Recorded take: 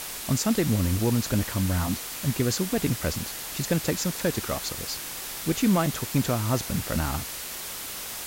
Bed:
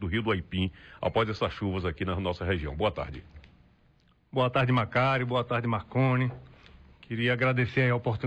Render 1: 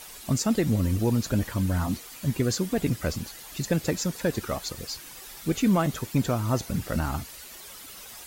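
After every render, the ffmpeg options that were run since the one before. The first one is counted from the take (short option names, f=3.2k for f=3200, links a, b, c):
-af "afftdn=nr=11:nf=-36"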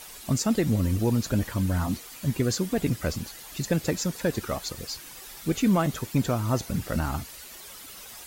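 -af anull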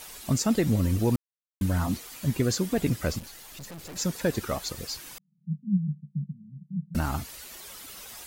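-filter_complex "[0:a]asettb=1/sr,asplit=3[a][b][c];[a]atrim=end=3.194[d];[b]atrim=start=3.19:end=3.96,asetpts=PTS-STARTPTS,afade=t=in:d=0.004:c=qsin,afade=t=out:st=0.766:d=0.004:c=qsin,aeval=exprs='(tanh(100*val(0)+0.5)-tanh(0.5))/100':c=same[e];[c]atrim=start=3.956[f];[d][e]acrossfade=d=0.004:c1=hsin:c2=qsin[g];[g][f]acrossfade=d=0.004:c1=qsin:c2=hsin,asettb=1/sr,asplit=3[h][i][j];[h]atrim=end=5.184[k];[i]atrim=start=5.18:end=6.95,asetpts=PTS-STARTPTS,afade=t=in:d=0.004:c=qsin,afade=t=out:st=1.766:d=0.004:c=qsin,asuperpass=centerf=170:order=8:qfactor=2.9[l];[j]atrim=start=6.946[m];[k][l]acrossfade=d=0.004:c1=hsin:c2=qsin[n];[n][m]acrossfade=d=0.004:c1=qsin:c2=hsin,asplit=3[o][p][q];[o]atrim=end=1.16,asetpts=PTS-STARTPTS,afade=t=out:st=1.156:d=0.004:c=hsin[r];[p]atrim=start=1.16:end=1.61,asetpts=PTS-STARTPTS,volume=0[s];[q]atrim=start=1.61,asetpts=PTS-STARTPTS,afade=t=in:d=0.004:c=hsin[t];[r][s][t]concat=n=3:v=0:a=1"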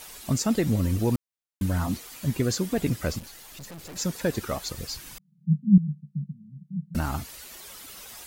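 -filter_complex "[0:a]asettb=1/sr,asplit=3[a][b][c];[a]atrim=end=4.614[d];[b]atrim=start=4.61:end=5.78,asetpts=PTS-STARTPTS,afade=t=in:d=0.004:c=qsin,afade=t=out:st=1.166:d=0.004:c=qsin,asubboost=boost=11:cutoff=240[e];[c]atrim=start=5.776[f];[d][e]acrossfade=d=0.004:c1=hsin:c2=qsin[g];[g][f]acrossfade=d=0.004:c1=qsin:c2=hsin"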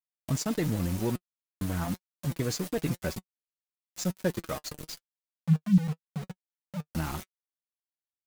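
-af "aeval=exprs='val(0)*gte(abs(val(0)),0.0282)':c=same,flanger=delay=5.3:depth=1.4:regen=47:speed=0.96:shape=sinusoidal"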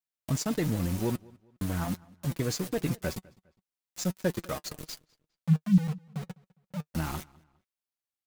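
-filter_complex "[0:a]asplit=2[a][b];[b]adelay=204,lowpass=f=4k:p=1,volume=-24dB,asplit=2[c][d];[d]adelay=204,lowpass=f=4k:p=1,volume=0.35[e];[a][c][e]amix=inputs=3:normalize=0"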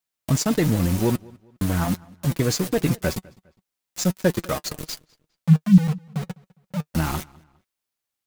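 -af "volume=8.5dB"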